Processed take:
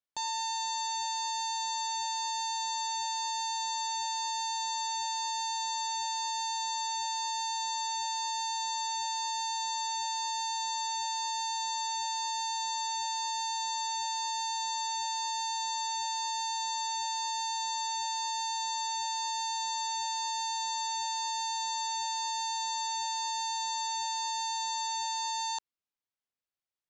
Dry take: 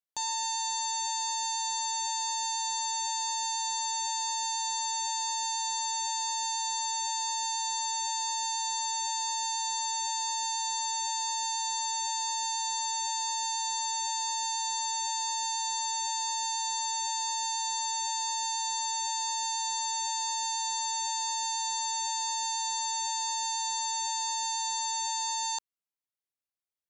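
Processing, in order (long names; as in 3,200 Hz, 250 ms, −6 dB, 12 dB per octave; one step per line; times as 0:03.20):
low-pass filter 5,400 Hz 12 dB per octave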